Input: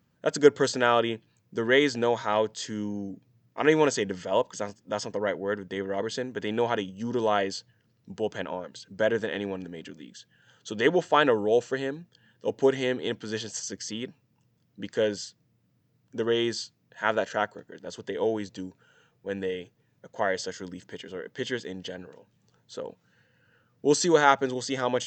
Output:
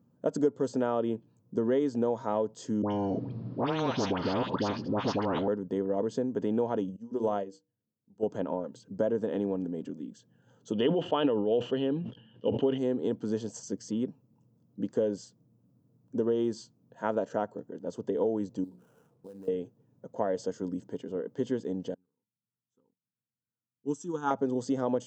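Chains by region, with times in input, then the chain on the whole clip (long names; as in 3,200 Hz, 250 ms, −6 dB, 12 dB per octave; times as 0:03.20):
0:02.82–0:05.48: elliptic low-pass filter 4,500 Hz, stop band 50 dB + all-pass dispersion highs, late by 91 ms, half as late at 1,200 Hz + every bin compressed towards the loudest bin 10 to 1
0:06.96–0:08.23: high-shelf EQ 6,300 Hz +6.5 dB + mains-hum notches 60/120/180/240/300/360/420/480 Hz + expander for the loud parts 2.5 to 1, over −37 dBFS
0:10.73–0:12.78: low-pass with resonance 3,000 Hz, resonance Q 11 + level that may fall only so fast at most 67 dB per second
0:18.64–0:19.48: mains-hum notches 60/120/180/240/300/360/420/480/540 Hz + downward compressor 10 to 1, threshold −46 dBFS + sample-rate reduction 4,400 Hz, jitter 20%
0:21.94–0:24.31: high-shelf EQ 5,700 Hz +5 dB + phaser with its sweep stopped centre 3,000 Hz, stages 8 + expander for the loud parts 2.5 to 1, over −40 dBFS
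whole clip: octave-band graphic EQ 125/250/500/1,000/2,000/4,000 Hz +7/+12/+7/+6/−11/−6 dB; downward compressor 4 to 1, threshold −18 dBFS; level −7 dB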